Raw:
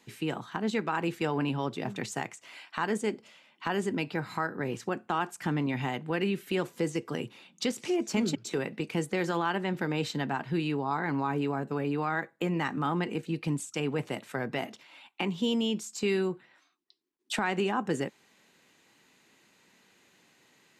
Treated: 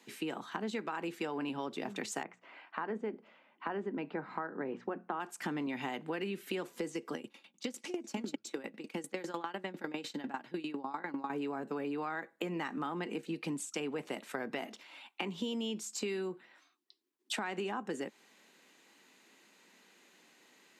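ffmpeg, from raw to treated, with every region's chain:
-filter_complex "[0:a]asettb=1/sr,asplit=3[a][b][c];[a]atrim=end=2.234[d];[b]atrim=start=2.23:end=5.2,asetpts=PTS-STARTPTS,afade=t=in:d=0.004:c=qsin,afade=t=out:st=2.966:d=0.004:c=qsin,lowpass=1.6k,bandreject=f=60:t=h:w=6,bandreject=f=120:t=h:w=6,bandreject=f=180:t=h:w=6,bandreject=f=240:t=h:w=6[e];[c]atrim=start=5.196[f];[d][e]acrossfade=d=0.004:c1=hsin:c2=qsin[g];[g][f]acrossfade=d=0.004:c1=qsin:c2=hsin,asettb=1/sr,asplit=3[h][i][j];[h]atrim=end=7.144[k];[i]atrim=start=7.14:end=11.3,asetpts=PTS-STARTPTS,afade=t=in:d=0.004:c=qsin,afade=t=out:st=4.156:d=0.004:c=qsin,aecho=1:1:3.6:0.32,atrim=end_sample=183456,aeval=exprs='val(0)*pow(10,-20*if(lt(mod(10*n/s,1),2*abs(10)/1000),1-mod(10*n/s,1)/(2*abs(10)/1000),(mod(10*n/s,1)-2*abs(10)/1000)/(1-2*abs(10)/1000))/20)':c=same[l];[j]atrim=start=11.296[m];[k][l]acrossfade=d=0.004:c1=hsin:c2=qsin[n];[n][m]acrossfade=d=0.004:c1=qsin:c2=hsin,highpass=f=200:w=0.5412,highpass=f=200:w=1.3066,acompressor=threshold=-34dB:ratio=6"

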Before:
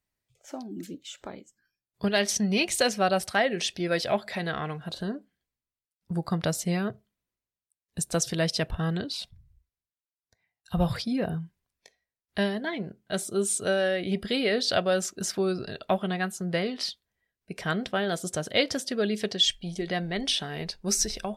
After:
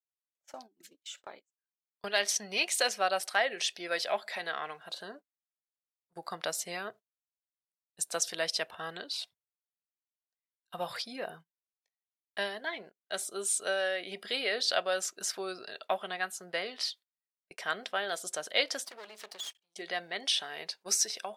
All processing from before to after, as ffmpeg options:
-filter_complex "[0:a]asettb=1/sr,asplit=3[a][b][c];[a]atrim=end=18.854[d];[b]atrim=start=18.85:end=19.75,asetpts=PTS-STARTPTS,afade=t=in:d=0.004:c=qsin,afade=t=out:st=0.896:d=0.004:c=qsin,bandreject=f=260:w=6.3,aeval=exprs='max(val(0),0)':c=same,acompressor=threshold=-36dB:ratio=2.5:attack=3.2:release=140:knee=1:detection=peak[e];[c]atrim=start=19.746[f];[d][e]acrossfade=d=0.004:c1=hsin:c2=qsin[g];[g][f]acrossfade=d=0.004:c1=qsin:c2=hsin,highpass=660,agate=range=-27dB:threshold=-48dB:ratio=16:detection=peak,volume=-2dB"

